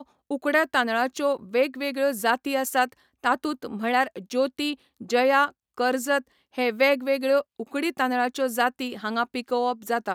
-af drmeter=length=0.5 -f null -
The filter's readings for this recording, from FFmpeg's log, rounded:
Channel 1: DR: 10.7
Overall DR: 10.7